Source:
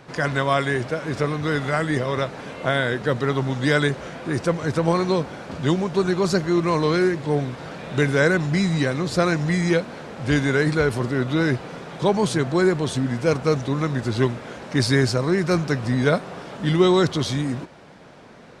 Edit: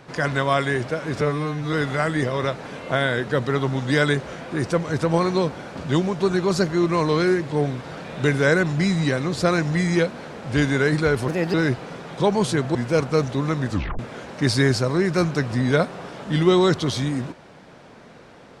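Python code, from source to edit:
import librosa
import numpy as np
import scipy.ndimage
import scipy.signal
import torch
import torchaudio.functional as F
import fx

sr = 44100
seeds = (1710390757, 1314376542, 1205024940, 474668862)

y = fx.edit(x, sr, fx.stretch_span(start_s=1.21, length_s=0.26, factor=2.0),
    fx.speed_span(start_s=11.02, length_s=0.34, speed=1.31),
    fx.cut(start_s=12.57, length_s=0.51),
    fx.tape_stop(start_s=14.04, length_s=0.28), tone=tone)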